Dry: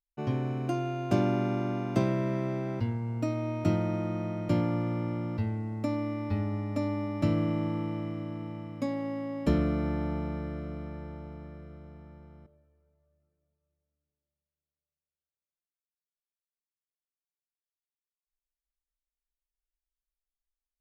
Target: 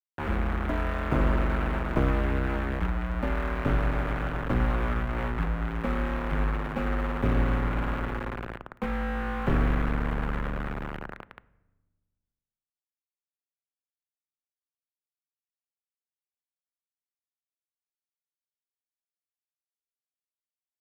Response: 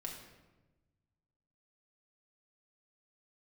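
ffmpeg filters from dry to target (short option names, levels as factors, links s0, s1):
-filter_complex "[0:a]acrusher=bits=3:dc=4:mix=0:aa=0.000001,asplit=2[s0][s1];[1:a]atrim=start_sample=2205,lowpass=2400[s2];[s1][s2]afir=irnorm=-1:irlink=0,volume=0.237[s3];[s0][s3]amix=inputs=2:normalize=0,afreqshift=-51,firequalizer=gain_entry='entry(660,0);entry(1400,7);entry(5000,-19)':delay=0.05:min_phase=1,volume=1.41"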